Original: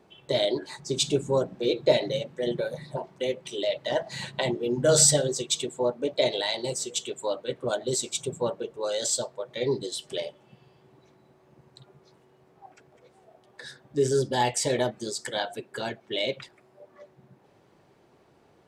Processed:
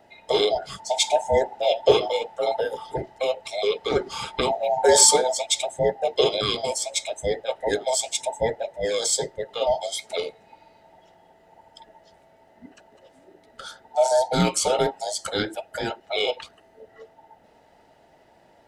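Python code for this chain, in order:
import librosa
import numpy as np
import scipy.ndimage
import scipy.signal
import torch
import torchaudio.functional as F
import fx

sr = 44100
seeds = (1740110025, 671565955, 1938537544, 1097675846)

y = fx.band_invert(x, sr, width_hz=1000)
y = y * librosa.db_to_amplitude(4.0)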